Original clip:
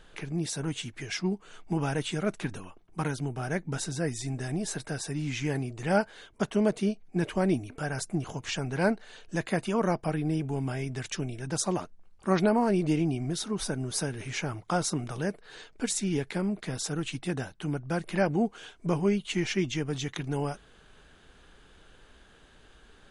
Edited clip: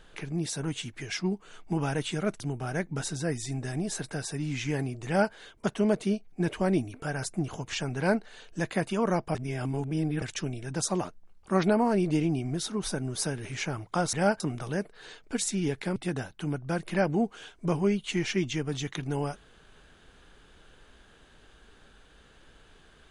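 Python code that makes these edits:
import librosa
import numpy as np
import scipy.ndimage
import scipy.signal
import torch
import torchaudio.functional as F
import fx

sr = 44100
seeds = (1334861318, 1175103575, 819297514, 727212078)

y = fx.edit(x, sr, fx.cut(start_s=2.4, length_s=0.76),
    fx.duplicate(start_s=5.82, length_s=0.27, to_s=14.89),
    fx.reverse_span(start_s=10.11, length_s=0.87),
    fx.cut(start_s=16.45, length_s=0.72), tone=tone)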